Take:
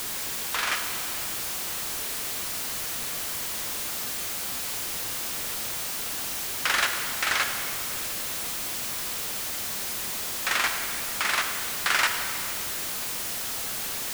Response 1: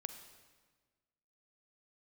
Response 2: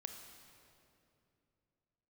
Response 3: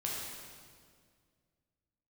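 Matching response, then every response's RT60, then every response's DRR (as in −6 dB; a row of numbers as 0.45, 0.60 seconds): 2; 1.4, 2.7, 2.0 seconds; 8.0, 5.0, −4.5 decibels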